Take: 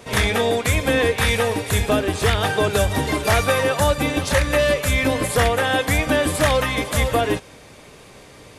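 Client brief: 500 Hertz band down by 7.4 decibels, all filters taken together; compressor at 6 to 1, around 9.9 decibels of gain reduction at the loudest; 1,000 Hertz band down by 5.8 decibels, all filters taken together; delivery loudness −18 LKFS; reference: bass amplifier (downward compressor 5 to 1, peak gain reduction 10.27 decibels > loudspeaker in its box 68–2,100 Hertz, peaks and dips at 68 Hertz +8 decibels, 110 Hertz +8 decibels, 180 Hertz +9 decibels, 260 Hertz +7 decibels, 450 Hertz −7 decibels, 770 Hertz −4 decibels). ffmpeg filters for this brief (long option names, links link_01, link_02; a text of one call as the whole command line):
ffmpeg -i in.wav -af "equalizer=frequency=500:width_type=o:gain=-4,equalizer=frequency=1000:width_type=o:gain=-4,acompressor=threshold=-26dB:ratio=6,acompressor=threshold=-35dB:ratio=5,highpass=frequency=68:width=0.5412,highpass=frequency=68:width=1.3066,equalizer=frequency=68:width_type=q:width=4:gain=8,equalizer=frequency=110:width_type=q:width=4:gain=8,equalizer=frequency=180:width_type=q:width=4:gain=9,equalizer=frequency=260:width_type=q:width=4:gain=7,equalizer=frequency=450:width_type=q:width=4:gain=-7,equalizer=frequency=770:width_type=q:width=4:gain=-4,lowpass=frequency=2100:width=0.5412,lowpass=frequency=2100:width=1.3066,volume=19dB" out.wav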